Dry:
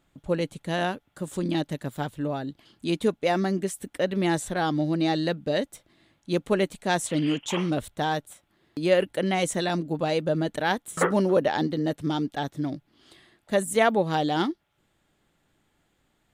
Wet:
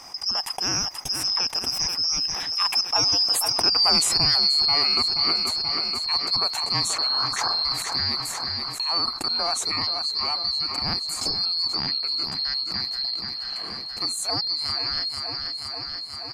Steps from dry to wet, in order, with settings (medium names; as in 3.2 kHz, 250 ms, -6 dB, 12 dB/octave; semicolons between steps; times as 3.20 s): four frequency bands reordered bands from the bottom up 2341; Doppler pass-by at 3.87 s, 33 m/s, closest 15 m; high-order bell 920 Hz +10 dB 1 oct; feedback delay 481 ms, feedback 45%, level -14 dB; level flattener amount 70%; trim +3.5 dB